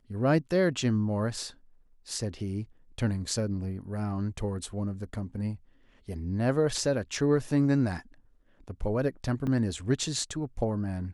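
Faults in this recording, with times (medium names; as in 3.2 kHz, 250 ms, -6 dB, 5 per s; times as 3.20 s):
9.47 s: dropout 3.8 ms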